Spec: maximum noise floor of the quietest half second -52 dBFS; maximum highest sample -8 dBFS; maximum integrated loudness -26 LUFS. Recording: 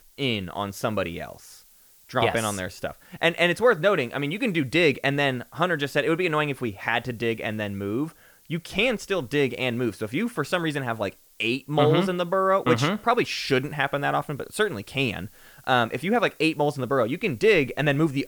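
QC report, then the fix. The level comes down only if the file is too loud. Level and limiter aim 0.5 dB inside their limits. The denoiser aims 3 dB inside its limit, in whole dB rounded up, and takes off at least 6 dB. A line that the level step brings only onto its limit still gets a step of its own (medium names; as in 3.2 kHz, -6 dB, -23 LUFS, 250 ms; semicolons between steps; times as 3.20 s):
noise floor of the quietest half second -55 dBFS: pass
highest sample -7.0 dBFS: fail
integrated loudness -24.5 LUFS: fail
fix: trim -2 dB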